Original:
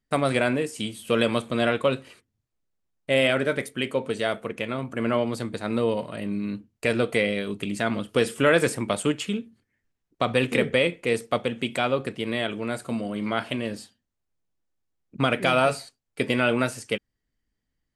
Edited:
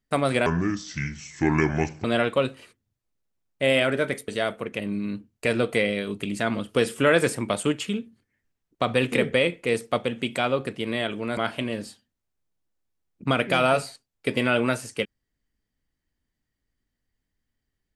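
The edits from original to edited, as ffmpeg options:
-filter_complex "[0:a]asplit=6[s0][s1][s2][s3][s4][s5];[s0]atrim=end=0.464[s6];[s1]atrim=start=0.46:end=1.52,asetpts=PTS-STARTPTS,asetrate=29547,aresample=44100,atrim=end_sample=69770,asetpts=PTS-STARTPTS[s7];[s2]atrim=start=1.516:end=3.762[s8];[s3]atrim=start=4.118:end=4.632[s9];[s4]atrim=start=6.188:end=12.772[s10];[s5]atrim=start=13.298[s11];[s6][s7]acrossfade=d=0.004:c1=hsin:c2=hsin[s12];[s12][s8]acrossfade=d=0.004:c1=hsin:c2=hsin[s13];[s13][s9]acrossfade=d=0.004:c1=hsin:c2=hsin[s14];[s14][s10]acrossfade=d=0.004:c1=hsin:c2=hsin[s15];[s15][s11]acrossfade=d=0.004:c1=hsin:c2=hsin"

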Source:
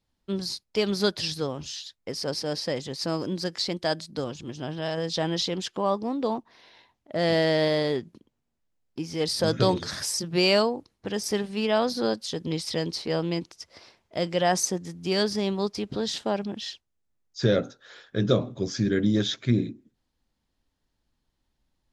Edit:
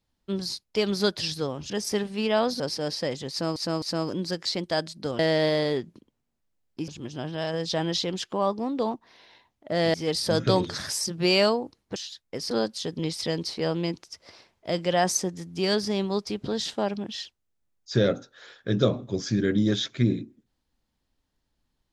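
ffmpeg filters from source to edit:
-filter_complex "[0:a]asplit=10[s0][s1][s2][s3][s4][s5][s6][s7][s8][s9];[s0]atrim=end=1.702[s10];[s1]atrim=start=11.088:end=11.992[s11];[s2]atrim=start=2.248:end=3.212[s12];[s3]atrim=start=2.948:end=3.212[s13];[s4]atrim=start=2.948:end=4.322[s14];[s5]atrim=start=7.378:end=9.072[s15];[s6]atrim=start=4.318:end=7.382[s16];[s7]atrim=start=9.068:end=11.092[s17];[s8]atrim=start=1.698:end=2.252[s18];[s9]atrim=start=11.988[s19];[s10][s11]acrossfade=d=0.004:c1=hsin:c2=hsin[s20];[s20][s12]acrossfade=d=0.004:c1=hsin:c2=hsin[s21];[s21][s13]acrossfade=d=0.004:c1=hsin:c2=hsin[s22];[s22][s14]acrossfade=d=0.004:c1=hsin:c2=hsin[s23];[s23][s15]acrossfade=d=0.004:c1=hsin:c2=hsin[s24];[s24][s16]acrossfade=d=0.004:c1=hsin:c2=hsin[s25];[s25][s17]acrossfade=d=0.004:c1=hsin:c2=hsin[s26];[s26][s18]acrossfade=d=0.004:c1=hsin:c2=hsin[s27];[s27][s19]acrossfade=d=0.004:c1=hsin:c2=hsin"

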